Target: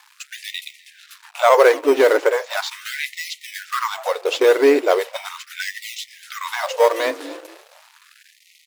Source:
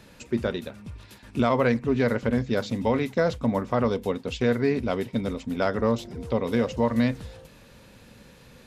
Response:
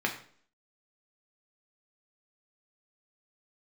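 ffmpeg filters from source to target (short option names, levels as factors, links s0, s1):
-filter_complex "[0:a]acontrast=61,asplit=2[s0][s1];[s1]asplit=3[s2][s3][s4];[s2]adelay=248,afreqshift=45,volume=0.0708[s5];[s3]adelay=496,afreqshift=90,volume=0.0367[s6];[s4]adelay=744,afreqshift=135,volume=0.0191[s7];[s5][s6][s7]amix=inputs=3:normalize=0[s8];[s0][s8]amix=inputs=2:normalize=0,aeval=exprs='sgn(val(0))*max(abs(val(0))-0.00708,0)':c=same,aeval=exprs='0.562*(cos(1*acos(clip(val(0)/0.562,-1,1)))-cos(1*PI/2))+0.0398*(cos(5*acos(clip(val(0)/0.562,-1,1)))-cos(5*PI/2))':c=same,asplit=2[s9][s10];[s10]acrusher=samples=11:mix=1:aa=0.000001:lfo=1:lforange=11:lforate=1.2,volume=0.299[s11];[s9][s11]amix=inputs=2:normalize=0,afftfilt=real='re*gte(b*sr/1024,260*pow(1900/260,0.5+0.5*sin(2*PI*0.38*pts/sr)))':imag='im*gte(b*sr/1024,260*pow(1900/260,0.5+0.5*sin(2*PI*0.38*pts/sr)))':win_size=1024:overlap=0.75,volume=1.41"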